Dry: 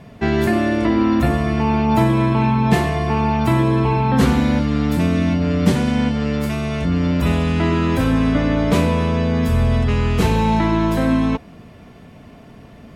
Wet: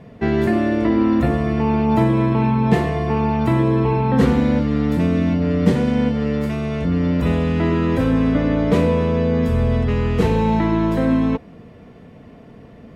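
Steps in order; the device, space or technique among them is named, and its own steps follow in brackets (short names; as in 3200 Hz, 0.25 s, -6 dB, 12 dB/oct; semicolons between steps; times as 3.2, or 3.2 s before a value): bell 240 Hz +3.5 dB 2.4 oct; inside a helmet (high shelf 5300 Hz -8.5 dB; small resonant body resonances 480/1900 Hz, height 8 dB, ringing for 45 ms); gain -3.5 dB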